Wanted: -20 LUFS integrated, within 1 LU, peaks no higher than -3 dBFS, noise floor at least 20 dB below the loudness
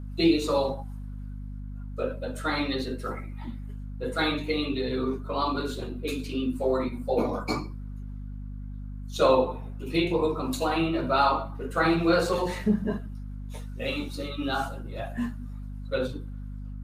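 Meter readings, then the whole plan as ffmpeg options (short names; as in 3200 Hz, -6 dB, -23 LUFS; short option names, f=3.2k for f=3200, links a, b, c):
hum 50 Hz; harmonics up to 250 Hz; hum level -34 dBFS; loudness -28.0 LUFS; peak -9.5 dBFS; loudness target -20.0 LUFS
-> -af "bandreject=f=50:t=h:w=4,bandreject=f=100:t=h:w=4,bandreject=f=150:t=h:w=4,bandreject=f=200:t=h:w=4,bandreject=f=250:t=h:w=4"
-af "volume=8dB,alimiter=limit=-3dB:level=0:latency=1"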